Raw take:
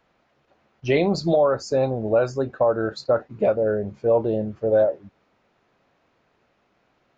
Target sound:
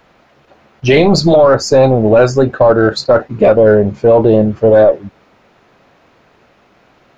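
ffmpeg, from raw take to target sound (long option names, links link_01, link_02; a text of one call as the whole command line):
ffmpeg -i in.wav -af "apsyclip=18.5dB,aeval=exprs='1.06*(cos(1*acos(clip(val(0)/1.06,-1,1)))-cos(1*PI/2))+0.0473*(cos(2*acos(clip(val(0)/1.06,-1,1)))-cos(2*PI/2))+0.00841*(cos(6*acos(clip(val(0)/1.06,-1,1)))-cos(6*PI/2))':channel_layout=same,volume=-2.5dB" out.wav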